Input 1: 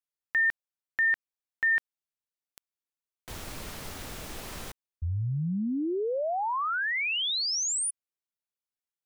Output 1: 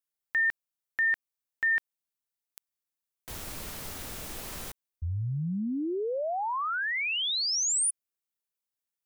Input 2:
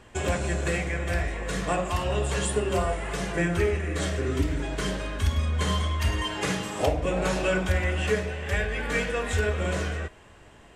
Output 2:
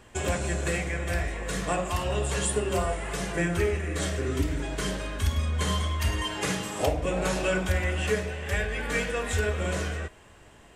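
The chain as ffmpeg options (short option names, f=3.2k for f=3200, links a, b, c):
-af "highshelf=f=8.1k:g=8,volume=-1.5dB"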